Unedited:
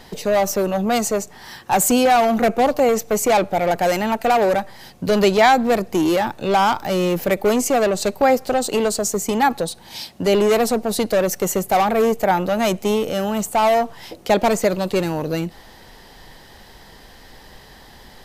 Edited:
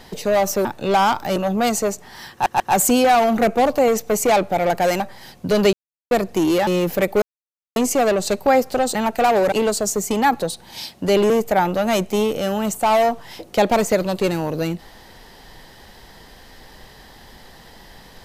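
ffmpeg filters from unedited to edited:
ffmpeg -i in.wav -filter_complex "[0:a]asplit=13[link_01][link_02][link_03][link_04][link_05][link_06][link_07][link_08][link_09][link_10][link_11][link_12][link_13];[link_01]atrim=end=0.652[link_14];[link_02]atrim=start=6.248:end=6.962[link_15];[link_03]atrim=start=0.648:end=1.752[link_16];[link_04]atrim=start=1.608:end=1.752[link_17];[link_05]atrim=start=1.608:end=4.012[link_18];[link_06]atrim=start=4.578:end=5.31,asetpts=PTS-STARTPTS,afade=type=out:start_time=0.728:duration=0.004:curve=hsin[link_19];[link_07]atrim=start=5.31:end=5.69,asetpts=PTS-STARTPTS,volume=0[link_20];[link_08]atrim=start=5.69:end=6.252,asetpts=PTS-STARTPTS,afade=type=in:duration=0.004:curve=hsin[link_21];[link_09]atrim=start=6.958:end=7.51,asetpts=PTS-STARTPTS,afade=type=out:start_time=0.548:duration=0.004:curve=hsin,apad=pad_dur=0.54[link_22];[link_10]atrim=start=7.51:end=8.702,asetpts=PTS-STARTPTS,afade=type=in:duration=0.004:curve=hsin[link_23];[link_11]atrim=start=4.008:end=4.582[link_24];[link_12]atrim=start=8.698:end=10.482[link_25];[link_13]atrim=start=12.018[link_26];[link_14][link_15]acrossfade=duration=0.004:curve1=hsin:curve2=hsin[link_27];[link_27][link_16]acrossfade=duration=0.004:curve1=hsin:curve2=hsin[link_28];[link_28][link_17]acrossfade=duration=0.004:curve1=hsin:curve2=hsin[link_29];[link_29][link_18]acrossfade=duration=0.004:curve1=hsin:curve2=hsin[link_30];[link_19][link_20][link_21]concat=n=3:v=0:a=1[link_31];[link_30][link_31]acrossfade=duration=0.004:curve1=hsin:curve2=hsin[link_32];[link_22][link_23]concat=n=2:v=0:a=1[link_33];[link_32][link_33]acrossfade=duration=0.004:curve1=hsin:curve2=hsin[link_34];[link_34][link_24]acrossfade=duration=0.004:curve1=hsin:curve2=hsin[link_35];[link_35][link_25]acrossfade=duration=0.004:curve1=hsin:curve2=hsin[link_36];[link_36][link_26]acrossfade=duration=0.004:curve1=hsin:curve2=hsin" out.wav

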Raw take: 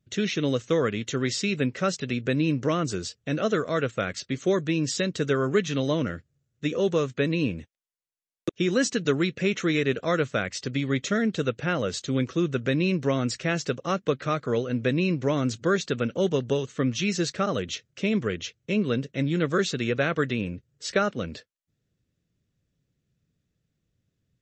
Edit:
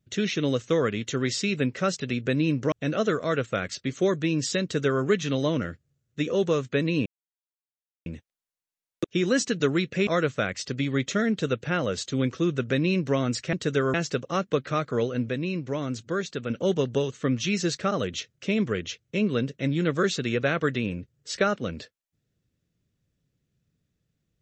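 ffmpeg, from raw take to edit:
ffmpeg -i in.wav -filter_complex "[0:a]asplit=8[link_01][link_02][link_03][link_04][link_05][link_06][link_07][link_08];[link_01]atrim=end=2.722[link_09];[link_02]atrim=start=3.168:end=7.51,asetpts=PTS-STARTPTS,afade=type=out:start_time=4.338:duration=0.004:curve=hsin,apad=pad_dur=1[link_10];[link_03]atrim=start=7.51:end=9.522,asetpts=PTS-STARTPTS,afade=type=in:duration=0.004:curve=hsin[link_11];[link_04]atrim=start=10.028:end=13.492[link_12];[link_05]atrim=start=5.068:end=5.482[link_13];[link_06]atrim=start=13.488:end=14.842[link_14];[link_07]atrim=start=14.838:end=16.052,asetpts=PTS-STARTPTS,volume=-5dB[link_15];[link_08]atrim=start=16.048[link_16];[link_10][link_11]concat=n=2:v=0:a=1[link_17];[link_09][link_17]acrossfade=duration=0.004:curve1=hsin:curve2=hsin[link_18];[link_18][link_12]acrossfade=duration=0.004:curve1=hsin:curve2=hsin[link_19];[link_19][link_13]acrossfade=duration=0.004:curve1=hsin:curve2=hsin[link_20];[link_20][link_14]acrossfade=duration=0.004:curve1=hsin:curve2=hsin[link_21];[link_21][link_15]acrossfade=duration=0.004:curve1=hsin:curve2=hsin[link_22];[link_22][link_16]acrossfade=duration=0.004:curve1=hsin:curve2=hsin" out.wav

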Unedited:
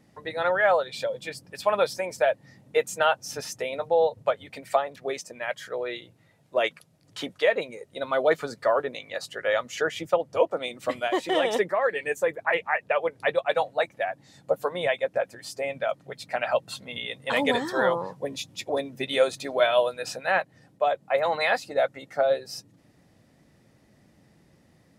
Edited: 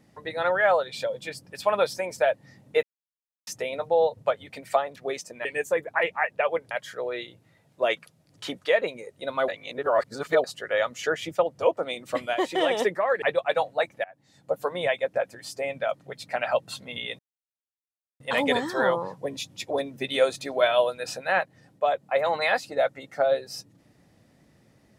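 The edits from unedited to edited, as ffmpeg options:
ffmpeg -i in.wav -filter_complex "[0:a]asplit=10[link_01][link_02][link_03][link_04][link_05][link_06][link_07][link_08][link_09][link_10];[link_01]atrim=end=2.83,asetpts=PTS-STARTPTS,afade=type=out:start_time=2.826:duration=0.004:curve=hsin[link_11];[link_02]atrim=start=2.83:end=3.47,asetpts=PTS-STARTPTS,volume=0[link_12];[link_03]atrim=start=3.47:end=5.452,asetpts=PTS-STARTPTS,afade=type=in:duration=0.004:curve=hsin[link_13];[link_04]atrim=start=11.958:end=13.222[link_14];[link_05]atrim=start=5.448:end=8.222[link_15];[link_06]atrim=start=8.218:end=9.182,asetpts=PTS-STARTPTS,areverse[link_16];[link_07]atrim=start=9.178:end=11.962[link_17];[link_08]atrim=start=13.218:end=14.04,asetpts=PTS-STARTPTS,afade=type=out:start_time=0.818:duration=0.004:curve=hsin:silence=0.0707946[link_18];[link_09]atrim=start=14.04:end=17.19,asetpts=PTS-STARTPTS,afade=type=in:duration=0.65:silence=0.0707946,afade=type=out:start_time=3.146:duration=0.004:curve=hsin,apad=pad_dur=1.01[link_19];[link_10]atrim=start=17.19,asetpts=PTS-STARTPTS,afade=type=in:duration=0.004:curve=hsin[link_20];[link_11][link_12][link_13]concat=n=3:v=0:a=1[link_21];[link_21][link_14]acrossfade=duration=0.004:curve1=hsin:curve2=hsin[link_22];[link_22][link_15]acrossfade=duration=0.004:curve1=hsin:curve2=hsin[link_23];[link_23][link_16]acrossfade=duration=0.004:curve1=hsin:curve2=hsin[link_24];[link_24][link_17]acrossfade=duration=0.004:curve1=hsin:curve2=hsin[link_25];[link_18][link_19][link_20]concat=n=3:v=0:a=1[link_26];[link_25][link_26]acrossfade=duration=0.004:curve1=hsin:curve2=hsin" out.wav

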